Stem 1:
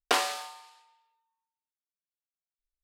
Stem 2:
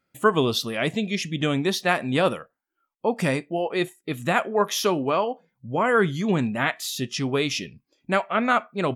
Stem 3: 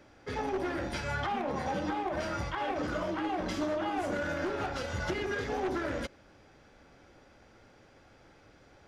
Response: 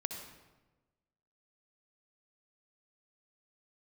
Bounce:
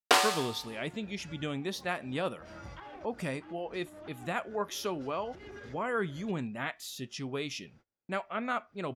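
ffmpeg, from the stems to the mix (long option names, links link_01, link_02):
-filter_complex "[0:a]volume=2dB[link_01];[1:a]volume=-12dB,asplit=2[link_02][link_03];[2:a]acrossover=split=220[link_04][link_05];[link_05]acompressor=threshold=-35dB:ratio=6[link_06];[link_04][link_06]amix=inputs=2:normalize=0,adelay=250,volume=-9.5dB[link_07];[link_03]apad=whole_len=402544[link_08];[link_07][link_08]sidechaincompress=threshold=-43dB:ratio=8:attack=7.4:release=220[link_09];[link_01][link_02][link_09]amix=inputs=3:normalize=0,agate=range=-29dB:threshold=-59dB:ratio=16:detection=peak"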